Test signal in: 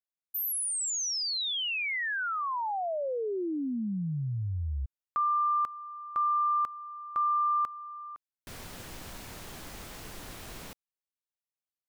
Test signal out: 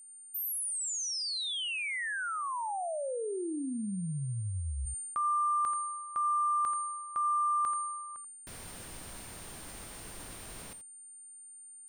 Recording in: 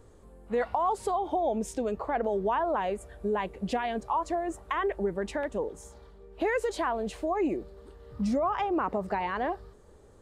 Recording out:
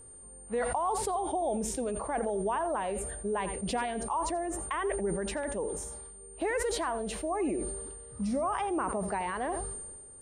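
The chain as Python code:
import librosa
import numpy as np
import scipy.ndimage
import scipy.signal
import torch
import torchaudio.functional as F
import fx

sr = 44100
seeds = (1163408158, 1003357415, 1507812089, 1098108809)

y = x + 10.0 ** (-46.0 / 20.0) * np.sin(2.0 * np.pi * 9000.0 * np.arange(len(x)) / sr)
y = y + 10.0 ** (-15.0 / 20.0) * np.pad(y, (int(84 * sr / 1000.0), 0))[:len(y)]
y = fx.sustainer(y, sr, db_per_s=34.0)
y = y * librosa.db_to_amplitude(-3.5)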